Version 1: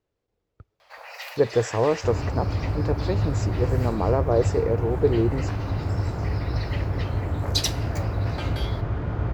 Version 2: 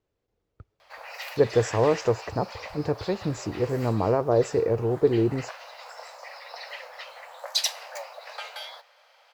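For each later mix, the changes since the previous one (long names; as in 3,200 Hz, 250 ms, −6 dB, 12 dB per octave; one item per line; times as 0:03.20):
second sound: muted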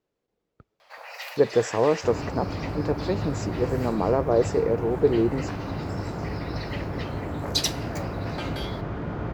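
second sound: unmuted
master: add low shelf with overshoot 130 Hz −7.5 dB, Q 1.5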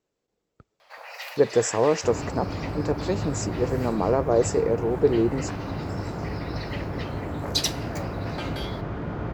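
speech: remove high-frequency loss of the air 110 metres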